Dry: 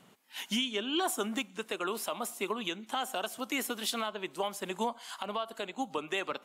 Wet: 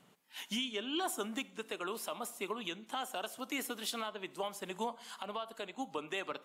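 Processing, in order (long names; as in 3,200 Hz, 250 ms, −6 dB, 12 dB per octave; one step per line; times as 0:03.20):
rectangular room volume 2,100 cubic metres, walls furnished, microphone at 0.4 metres
level −5 dB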